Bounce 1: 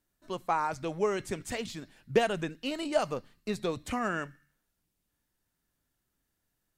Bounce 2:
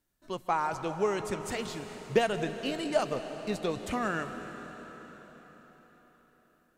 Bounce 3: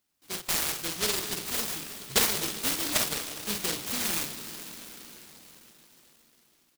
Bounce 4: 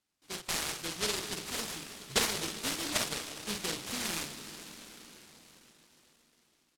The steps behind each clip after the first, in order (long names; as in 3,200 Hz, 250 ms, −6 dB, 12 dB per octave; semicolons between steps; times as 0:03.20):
convolution reverb RT60 4.8 s, pre-delay 115 ms, DRR 8 dB
meter weighting curve D; on a send: multi-tap delay 48/119 ms −5.5/−18.5 dB; on the sum: short delay modulated by noise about 3,800 Hz, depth 0.48 ms; level −1.5 dB
Bessel low-pass filter 8,800 Hz, order 2; level −3 dB